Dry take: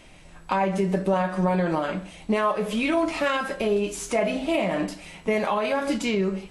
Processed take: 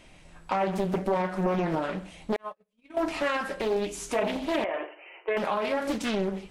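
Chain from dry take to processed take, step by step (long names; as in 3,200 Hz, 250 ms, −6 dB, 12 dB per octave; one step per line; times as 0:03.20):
0:02.36–0:02.97: noise gate −19 dBFS, range −49 dB
0:04.64–0:05.37: linear-phase brick-wall band-pass 320–3,100 Hz
highs frequency-modulated by the lows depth 0.83 ms
level −3.5 dB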